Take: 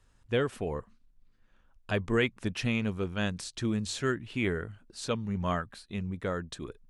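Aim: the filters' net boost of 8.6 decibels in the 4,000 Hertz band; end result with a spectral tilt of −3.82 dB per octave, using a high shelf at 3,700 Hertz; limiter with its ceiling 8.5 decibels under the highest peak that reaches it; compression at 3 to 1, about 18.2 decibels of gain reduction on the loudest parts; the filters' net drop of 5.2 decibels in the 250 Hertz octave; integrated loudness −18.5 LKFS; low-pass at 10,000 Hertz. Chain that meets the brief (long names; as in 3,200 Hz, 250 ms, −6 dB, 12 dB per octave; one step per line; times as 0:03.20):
low-pass filter 10,000 Hz
parametric band 250 Hz −7 dB
high-shelf EQ 3,700 Hz +8 dB
parametric band 4,000 Hz +6 dB
downward compressor 3 to 1, threshold −48 dBFS
level +30 dB
brickwall limiter −6.5 dBFS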